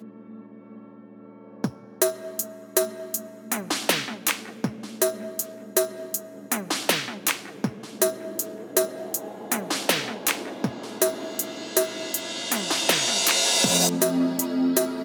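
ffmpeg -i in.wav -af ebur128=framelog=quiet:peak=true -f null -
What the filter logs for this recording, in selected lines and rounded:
Integrated loudness:
  I:         -24.9 LUFS
  Threshold: -35.3 LUFS
Loudness range:
  LRA:         5.6 LU
  Threshold: -45.7 LUFS
  LRA low:   -27.5 LUFS
  LRA high:  -21.8 LUFS
True peak:
  Peak:       -2.8 dBFS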